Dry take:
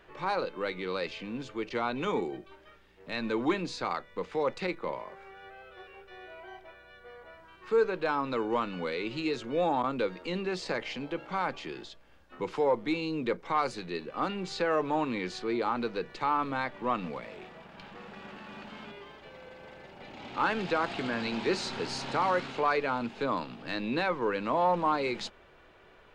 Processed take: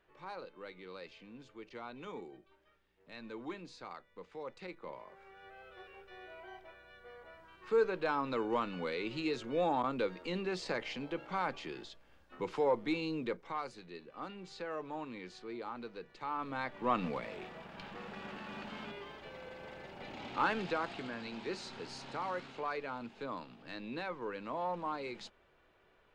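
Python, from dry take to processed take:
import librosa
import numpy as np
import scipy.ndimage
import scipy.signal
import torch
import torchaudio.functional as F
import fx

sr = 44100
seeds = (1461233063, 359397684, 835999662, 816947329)

y = fx.gain(x, sr, db=fx.line((4.53, -15.0), (5.65, -4.0), (13.11, -4.0), (13.7, -13.0), (16.14, -13.0), (17.02, 0.0), (20.12, 0.0), (21.2, -11.0)))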